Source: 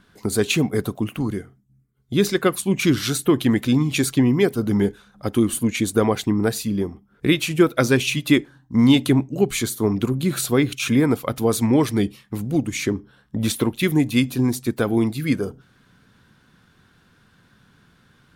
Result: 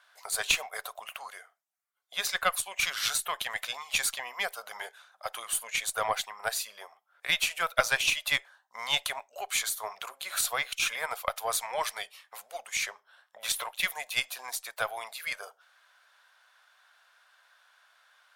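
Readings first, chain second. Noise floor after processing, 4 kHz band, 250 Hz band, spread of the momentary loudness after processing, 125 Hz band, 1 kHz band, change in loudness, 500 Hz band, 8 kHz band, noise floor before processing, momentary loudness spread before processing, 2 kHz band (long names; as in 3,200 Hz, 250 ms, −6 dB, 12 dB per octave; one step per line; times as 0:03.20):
−72 dBFS, −2.5 dB, −40.0 dB, 15 LU, −33.5 dB, −2.5 dB, −9.5 dB, −17.0 dB, −3.0 dB, −59 dBFS, 8 LU, −2.0 dB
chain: elliptic high-pass filter 620 Hz, stop band 50 dB
harmonic generator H 2 −13 dB, 6 −40 dB, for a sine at −6 dBFS
level −2 dB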